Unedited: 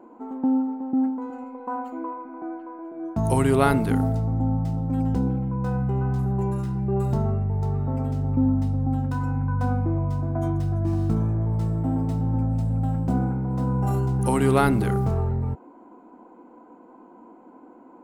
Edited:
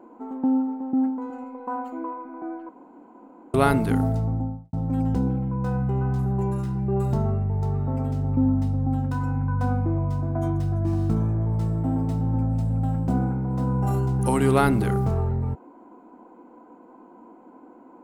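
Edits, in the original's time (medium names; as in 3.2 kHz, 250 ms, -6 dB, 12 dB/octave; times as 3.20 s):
2.69–3.54 s: room tone
4.23–4.73 s: studio fade out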